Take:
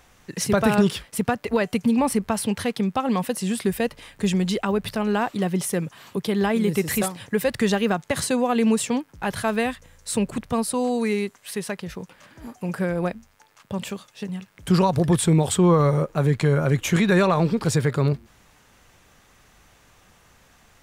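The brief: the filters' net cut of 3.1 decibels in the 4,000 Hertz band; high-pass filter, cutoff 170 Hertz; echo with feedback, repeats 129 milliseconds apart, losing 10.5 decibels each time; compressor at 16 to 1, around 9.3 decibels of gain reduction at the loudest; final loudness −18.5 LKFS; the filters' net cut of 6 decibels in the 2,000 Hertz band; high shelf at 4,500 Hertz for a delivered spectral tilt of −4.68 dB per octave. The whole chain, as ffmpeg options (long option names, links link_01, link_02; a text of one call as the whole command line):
ffmpeg -i in.wav -af "highpass=170,equalizer=frequency=2000:width_type=o:gain=-8,equalizer=frequency=4000:width_type=o:gain=-5,highshelf=frequency=4500:gain=6.5,acompressor=threshold=-24dB:ratio=16,aecho=1:1:129|258|387:0.299|0.0896|0.0269,volume=11dB" out.wav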